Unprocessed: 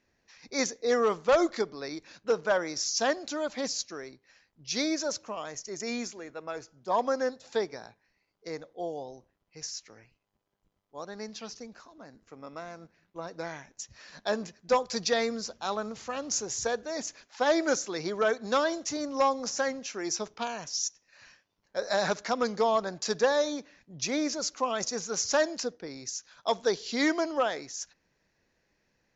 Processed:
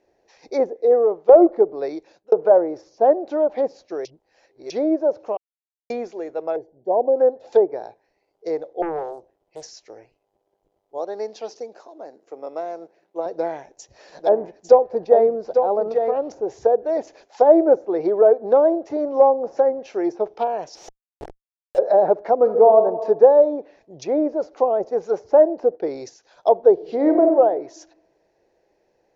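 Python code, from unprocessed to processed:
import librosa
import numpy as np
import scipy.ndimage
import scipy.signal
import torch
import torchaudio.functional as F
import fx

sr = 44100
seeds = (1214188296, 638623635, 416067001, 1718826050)

y = fx.moving_average(x, sr, points=34, at=(6.56, 7.16))
y = fx.doppler_dist(y, sr, depth_ms=0.96, at=(8.82, 9.71))
y = fx.highpass(y, sr, hz=240.0, slope=12, at=(10.98, 13.26))
y = fx.echo_single(y, sr, ms=850, db=-6.5, at=(14.18, 16.12), fade=0.02)
y = fx.schmitt(y, sr, flips_db=-47.5, at=(20.75, 21.78))
y = fx.reverb_throw(y, sr, start_s=22.36, length_s=0.4, rt60_s=1.2, drr_db=5.5)
y = fx.leveller(y, sr, passes=1, at=(25.57, 26.14))
y = fx.reverb_throw(y, sr, start_s=26.73, length_s=0.52, rt60_s=1.0, drr_db=5.0)
y = fx.edit(y, sr, fx.fade_out_to(start_s=0.68, length_s=0.61, floor_db=-12.0),
    fx.fade_out_span(start_s=1.85, length_s=0.47),
    fx.reverse_span(start_s=4.05, length_s=0.65),
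    fx.silence(start_s=5.37, length_s=0.53), tone=tone)
y = fx.env_lowpass_down(y, sr, base_hz=910.0, full_db=-27.0)
y = fx.band_shelf(y, sr, hz=530.0, db=15.5, octaves=1.7)
y = y * 10.0 ** (-1.0 / 20.0)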